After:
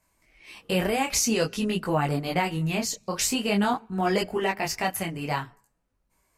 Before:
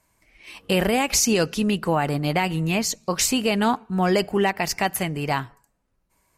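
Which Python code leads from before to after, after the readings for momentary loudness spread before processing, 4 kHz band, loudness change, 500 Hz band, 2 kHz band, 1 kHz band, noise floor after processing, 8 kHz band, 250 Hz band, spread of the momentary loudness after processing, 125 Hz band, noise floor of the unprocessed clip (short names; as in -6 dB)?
7 LU, -4.0 dB, -4.0 dB, -4.0 dB, -3.5 dB, -3.5 dB, -73 dBFS, -4.0 dB, -4.0 dB, 7 LU, -3.5 dB, -70 dBFS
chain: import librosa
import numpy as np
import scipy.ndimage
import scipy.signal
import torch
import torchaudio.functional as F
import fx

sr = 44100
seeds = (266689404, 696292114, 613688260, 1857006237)

y = fx.detune_double(x, sr, cents=17)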